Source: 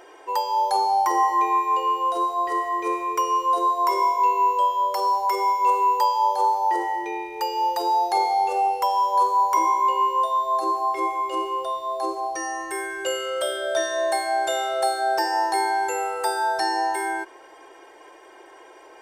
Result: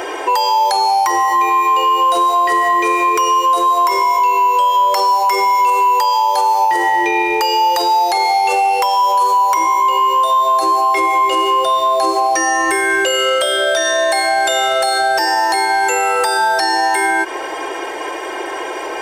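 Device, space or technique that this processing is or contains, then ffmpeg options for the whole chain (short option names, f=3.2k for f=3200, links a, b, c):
mastering chain: -filter_complex "[0:a]highpass=40,equalizer=f=2.5k:t=o:w=0.77:g=2.5,acrossover=split=1300|8000[a][b][c];[a]acompressor=threshold=-33dB:ratio=4[d];[b]acompressor=threshold=-33dB:ratio=4[e];[c]acompressor=threshold=-48dB:ratio=4[f];[d][e][f]amix=inputs=3:normalize=0,acompressor=threshold=-33dB:ratio=2.5,asoftclip=type=tanh:threshold=-23.5dB,alimiter=level_in=29.5dB:limit=-1dB:release=50:level=0:latency=1,volume=-6.5dB"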